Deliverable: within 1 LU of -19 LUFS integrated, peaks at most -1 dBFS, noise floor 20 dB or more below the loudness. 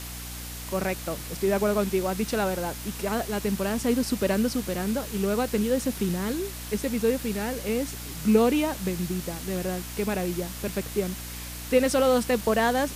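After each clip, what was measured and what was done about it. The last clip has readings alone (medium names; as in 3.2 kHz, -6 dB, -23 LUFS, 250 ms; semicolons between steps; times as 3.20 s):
hum 60 Hz; highest harmonic 300 Hz; hum level -37 dBFS; noise floor -37 dBFS; noise floor target -47 dBFS; loudness -27.0 LUFS; peak level -8.5 dBFS; loudness target -19.0 LUFS
-> hum notches 60/120/180/240/300 Hz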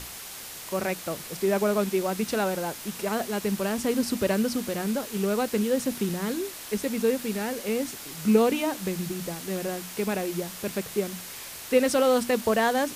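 hum not found; noise floor -40 dBFS; noise floor target -47 dBFS
-> noise print and reduce 7 dB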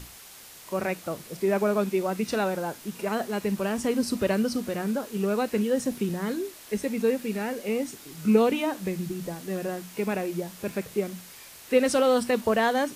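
noise floor -47 dBFS; noise floor target -48 dBFS
-> noise print and reduce 6 dB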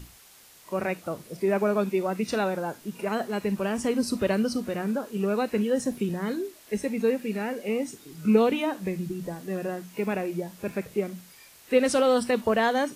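noise floor -53 dBFS; loudness -27.5 LUFS; peak level -8.5 dBFS; loudness target -19.0 LUFS
-> trim +8.5 dB; peak limiter -1 dBFS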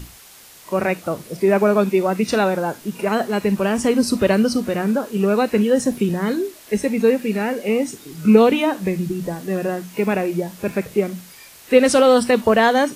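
loudness -19.0 LUFS; peak level -1.0 dBFS; noise floor -45 dBFS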